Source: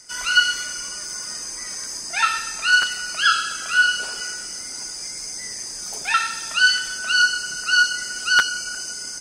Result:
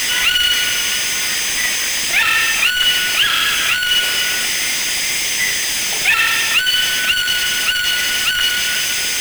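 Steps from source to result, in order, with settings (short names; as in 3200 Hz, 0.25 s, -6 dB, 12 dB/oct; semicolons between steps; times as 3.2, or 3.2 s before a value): infinite clipping; band shelf 2500 Hz +12 dB 1.2 oct; gain +2 dB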